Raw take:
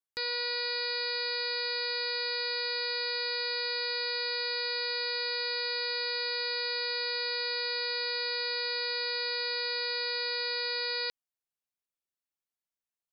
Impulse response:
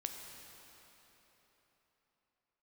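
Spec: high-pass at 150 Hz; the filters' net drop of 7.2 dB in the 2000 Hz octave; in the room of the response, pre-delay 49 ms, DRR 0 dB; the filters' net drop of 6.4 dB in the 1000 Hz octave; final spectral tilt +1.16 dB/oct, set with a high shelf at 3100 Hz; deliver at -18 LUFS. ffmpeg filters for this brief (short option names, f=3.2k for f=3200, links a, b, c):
-filter_complex "[0:a]highpass=150,equalizer=f=1k:t=o:g=-5,equalizer=f=2k:t=o:g=-6,highshelf=f=3.1k:g=-4.5,asplit=2[a][b];[1:a]atrim=start_sample=2205,adelay=49[c];[b][c]afir=irnorm=-1:irlink=0,volume=1dB[d];[a][d]amix=inputs=2:normalize=0,volume=14.5dB"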